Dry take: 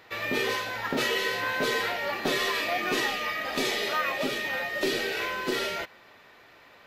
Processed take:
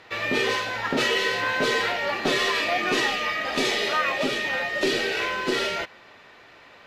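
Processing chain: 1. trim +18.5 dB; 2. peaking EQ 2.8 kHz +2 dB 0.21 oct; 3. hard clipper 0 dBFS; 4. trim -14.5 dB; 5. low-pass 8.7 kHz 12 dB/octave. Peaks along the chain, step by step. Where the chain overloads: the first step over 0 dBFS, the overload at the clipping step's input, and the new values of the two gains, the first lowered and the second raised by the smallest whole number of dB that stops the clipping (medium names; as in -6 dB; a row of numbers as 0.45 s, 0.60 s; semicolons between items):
+3.5 dBFS, +4.0 dBFS, 0.0 dBFS, -14.5 dBFS, -14.0 dBFS; step 1, 4.0 dB; step 1 +14.5 dB, step 4 -10.5 dB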